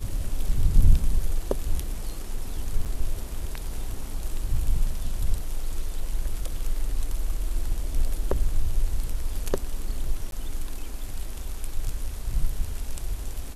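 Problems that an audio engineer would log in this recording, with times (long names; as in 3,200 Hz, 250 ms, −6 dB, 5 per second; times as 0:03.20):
0:02.85–0:02.86: drop-out 8 ms
0:10.31–0:10.32: drop-out 12 ms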